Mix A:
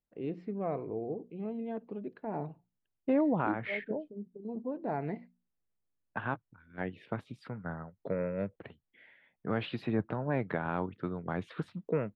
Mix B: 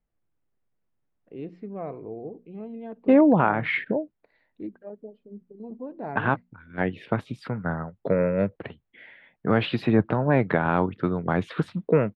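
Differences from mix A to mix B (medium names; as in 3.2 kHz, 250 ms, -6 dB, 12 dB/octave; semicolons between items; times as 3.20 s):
first voice: entry +1.15 s; second voice +11.0 dB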